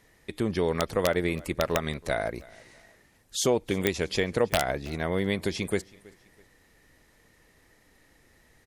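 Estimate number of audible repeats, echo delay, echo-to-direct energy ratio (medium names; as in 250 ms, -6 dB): 2, 325 ms, -23.0 dB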